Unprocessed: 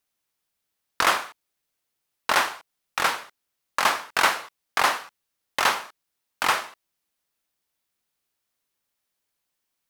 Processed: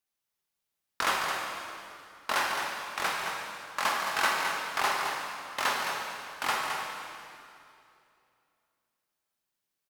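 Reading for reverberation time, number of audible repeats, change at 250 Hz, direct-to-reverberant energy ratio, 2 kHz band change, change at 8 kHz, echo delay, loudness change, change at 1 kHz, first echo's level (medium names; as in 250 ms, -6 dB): 2.7 s, 1, -4.5 dB, -1.5 dB, -4.5 dB, -5.0 dB, 215 ms, -6.0 dB, -5.0 dB, -7.0 dB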